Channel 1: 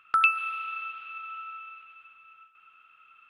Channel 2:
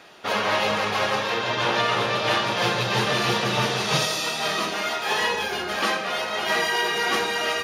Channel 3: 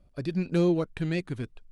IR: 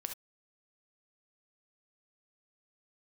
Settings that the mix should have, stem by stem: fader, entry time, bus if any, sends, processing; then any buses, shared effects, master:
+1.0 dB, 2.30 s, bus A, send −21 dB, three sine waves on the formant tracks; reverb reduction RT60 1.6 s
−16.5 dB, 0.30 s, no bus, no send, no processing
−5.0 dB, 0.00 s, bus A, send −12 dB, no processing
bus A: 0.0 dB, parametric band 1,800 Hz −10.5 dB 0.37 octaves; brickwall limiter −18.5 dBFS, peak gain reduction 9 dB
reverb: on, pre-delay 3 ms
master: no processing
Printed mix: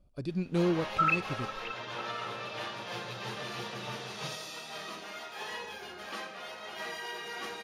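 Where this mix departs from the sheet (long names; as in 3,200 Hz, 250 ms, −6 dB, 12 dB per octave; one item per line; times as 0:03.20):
stem 1: entry 2.30 s → 0.85 s
reverb return −6.5 dB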